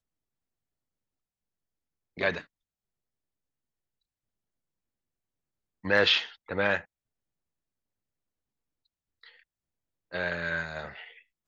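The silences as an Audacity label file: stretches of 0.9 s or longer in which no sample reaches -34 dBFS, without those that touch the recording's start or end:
2.400000	5.850000	silence
6.790000	10.130000	silence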